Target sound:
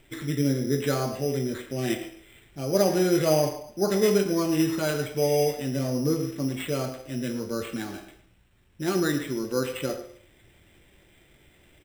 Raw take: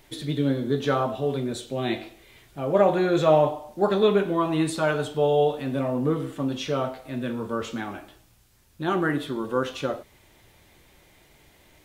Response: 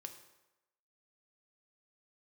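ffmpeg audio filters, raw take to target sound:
-filter_complex "[0:a]lowpass=2.9k,equalizer=f=990:w=0.91:g=-14.5,asplit=2[a][b];[1:a]atrim=start_sample=2205,afade=t=out:st=0.32:d=0.01,atrim=end_sample=14553[c];[b][c]afir=irnorm=-1:irlink=0,volume=4dB[d];[a][d]amix=inputs=2:normalize=0,acrusher=samples=8:mix=1:aa=0.000001,lowshelf=f=370:g=-5.5,asplit=2[e][f];[f]adelay=110,highpass=300,lowpass=3.4k,asoftclip=type=hard:threshold=-18dB,volume=-13dB[g];[e][g]amix=inputs=2:normalize=0"

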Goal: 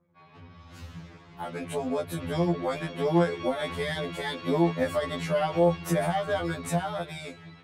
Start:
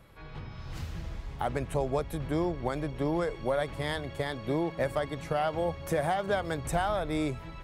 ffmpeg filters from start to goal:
-filter_complex "[0:a]anlmdn=0.001,highpass=110,adynamicequalizer=threshold=0.00501:dfrequency=3400:dqfactor=0.79:tfrequency=3400:tqfactor=0.79:attack=5:release=100:ratio=0.375:range=2:mode=boostabove:tftype=bell,acrossover=split=290[a][b];[b]alimiter=level_in=2.5dB:limit=-24dB:level=0:latency=1:release=30,volume=-2.5dB[c];[a][c]amix=inputs=2:normalize=0,dynaudnorm=f=500:g=7:m=11dB,asplit=2[d][e];[e]asoftclip=type=hard:threshold=-25dB,volume=-11.5dB[f];[d][f]amix=inputs=2:normalize=0,flanger=delay=5.7:depth=2.5:regen=-38:speed=0.7:shape=sinusoidal,afftfilt=real='re*2*eq(mod(b,4),0)':imag='im*2*eq(mod(b,4),0)':win_size=2048:overlap=0.75"

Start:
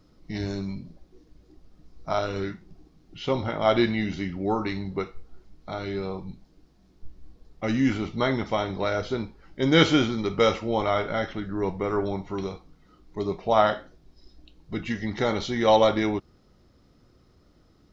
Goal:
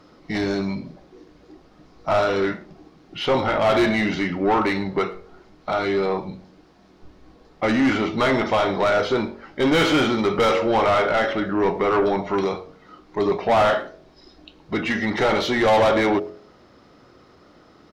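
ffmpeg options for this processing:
-filter_complex "[0:a]bandreject=f=46.29:t=h:w=4,bandreject=f=92.58:t=h:w=4,bandreject=f=138.87:t=h:w=4,bandreject=f=185.16:t=h:w=4,bandreject=f=231.45:t=h:w=4,bandreject=f=277.74:t=h:w=4,bandreject=f=324.03:t=h:w=4,bandreject=f=370.32:t=h:w=4,bandreject=f=416.61:t=h:w=4,bandreject=f=462.9:t=h:w=4,bandreject=f=509.19:t=h:w=4,bandreject=f=555.48:t=h:w=4,bandreject=f=601.77:t=h:w=4,bandreject=f=648.06:t=h:w=4,bandreject=f=694.35:t=h:w=4,asplit=2[a][b];[b]highpass=f=720:p=1,volume=29dB,asoftclip=type=tanh:threshold=-4dB[c];[a][c]amix=inputs=2:normalize=0,lowpass=f=1.6k:p=1,volume=-6dB,asplit=2[d][e];[e]adelay=110,highpass=300,lowpass=3.4k,asoftclip=type=hard:threshold=-14dB,volume=-23dB[f];[d][f]amix=inputs=2:normalize=0,volume=-4.5dB"

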